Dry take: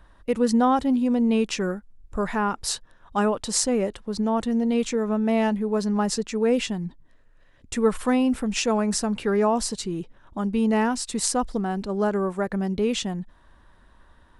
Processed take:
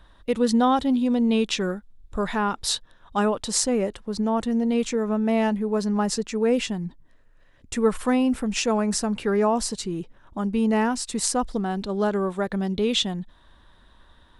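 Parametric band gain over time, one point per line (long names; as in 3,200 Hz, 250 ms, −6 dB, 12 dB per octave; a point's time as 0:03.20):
parametric band 3,600 Hz 0.44 octaves
0:02.73 +9.5 dB
0:03.79 0 dB
0:11.32 0 dB
0:11.91 +11 dB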